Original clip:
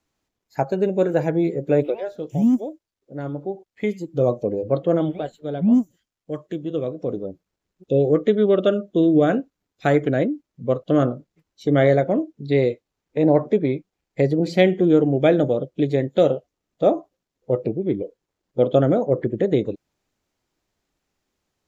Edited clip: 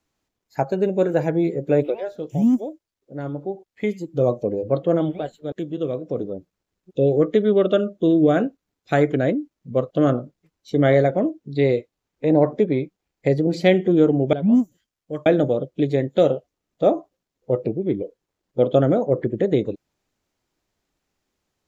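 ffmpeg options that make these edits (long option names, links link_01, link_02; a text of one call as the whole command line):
ffmpeg -i in.wav -filter_complex "[0:a]asplit=4[link_01][link_02][link_03][link_04];[link_01]atrim=end=5.522[link_05];[link_02]atrim=start=6.448:end=15.262[link_06];[link_03]atrim=start=5.518:end=6.452[link_07];[link_04]atrim=start=15.258[link_08];[link_05][link_06]acrossfade=duration=0.004:curve1=hsin:curve2=hsin[link_09];[link_09][link_07]acrossfade=duration=0.004:curve1=hsin:curve2=hsin[link_10];[link_10][link_08]acrossfade=duration=0.004:curve1=hsin:curve2=hsin" out.wav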